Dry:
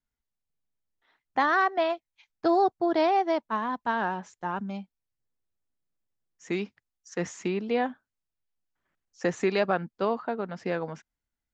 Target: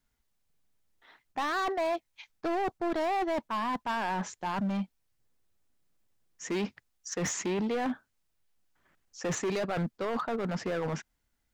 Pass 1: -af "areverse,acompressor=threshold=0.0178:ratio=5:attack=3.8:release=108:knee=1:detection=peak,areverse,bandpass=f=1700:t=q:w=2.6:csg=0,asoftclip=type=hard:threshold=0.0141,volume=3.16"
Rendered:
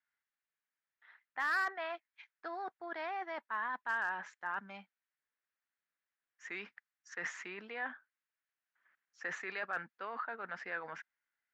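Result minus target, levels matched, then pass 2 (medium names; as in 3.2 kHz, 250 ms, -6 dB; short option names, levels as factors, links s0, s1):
2 kHz band +8.5 dB
-af "areverse,acompressor=threshold=0.0178:ratio=5:attack=3.8:release=108:knee=1:detection=peak,areverse,asoftclip=type=hard:threshold=0.0141,volume=3.16"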